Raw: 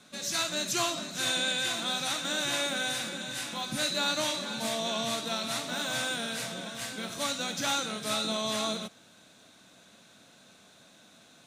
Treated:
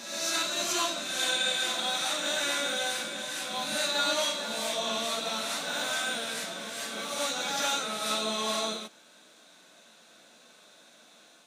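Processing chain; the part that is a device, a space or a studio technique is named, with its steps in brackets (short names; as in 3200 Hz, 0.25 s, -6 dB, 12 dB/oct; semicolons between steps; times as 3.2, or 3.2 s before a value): ghost voice (reverse; reverb RT60 1.4 s, pre-delay 7 ms, DRR -1 dB; reverse; HPF 320 Hz 12 dB/oct); gain -2 dB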